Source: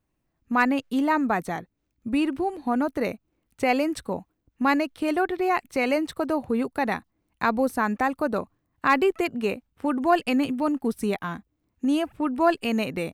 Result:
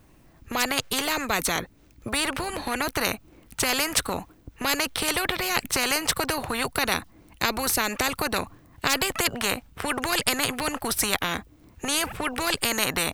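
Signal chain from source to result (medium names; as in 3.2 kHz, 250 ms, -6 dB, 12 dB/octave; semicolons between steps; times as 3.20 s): spectrum-flattening compressor 4:1; trim +4.5 dB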